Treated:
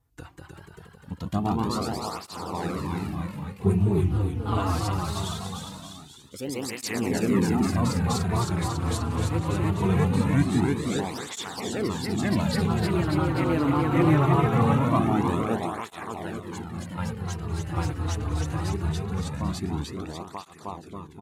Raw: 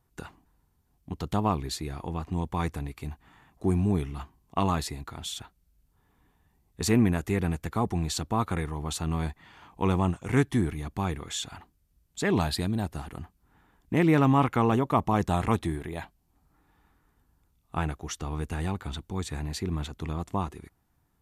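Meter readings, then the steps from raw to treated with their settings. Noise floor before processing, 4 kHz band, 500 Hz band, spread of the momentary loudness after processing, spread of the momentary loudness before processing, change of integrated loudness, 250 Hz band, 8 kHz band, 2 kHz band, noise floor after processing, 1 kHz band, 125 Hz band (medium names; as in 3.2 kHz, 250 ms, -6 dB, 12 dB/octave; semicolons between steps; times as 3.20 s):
-71 dBFS, +2.0 dB, +3.0 dB, 14 LU, 15 LU, +2.5 dB, +3.5 dB, +2.0 dB, +2.5 dB, -49 dBFS, +2.0 dB, +4.5 dB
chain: bass shelf 210 Hz +3.5 dB; on a send: bouncing-ball echo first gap 310 ms, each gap 0.9×, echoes 5; on the sum: ever faster or slower copies 206 ms, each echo +1 st, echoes 3; cancelling through-zero flanger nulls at 0.22 Hz, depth 5.5 ms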